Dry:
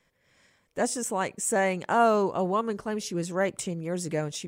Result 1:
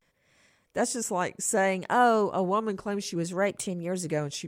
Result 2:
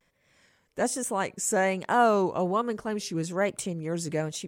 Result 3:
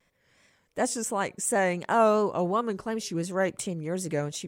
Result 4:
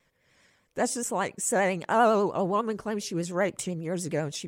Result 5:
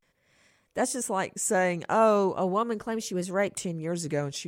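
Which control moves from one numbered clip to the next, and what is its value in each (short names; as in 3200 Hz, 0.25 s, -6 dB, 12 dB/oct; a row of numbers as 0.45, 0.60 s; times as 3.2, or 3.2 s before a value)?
vibrato, rate: 0.61, 1.2, 2.8, 10, 0.41 Hz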